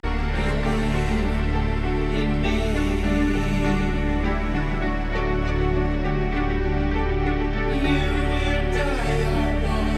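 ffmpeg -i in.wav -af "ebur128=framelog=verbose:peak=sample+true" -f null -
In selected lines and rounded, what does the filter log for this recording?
Integrated loudness:
  I:         -23.6 LUFS
  Threshold: -33.6 LUFS
Loudness range:
  LRA:         1.0 LU
  Threshold: -43.6 LUFS
  LRA low:   -24.2 LUFS
  LRA high:  -23.3 LUFS
Sample peak:
  Peak:       -9.1 dBFS
True peak:
  Peak:       -9.1 dBFS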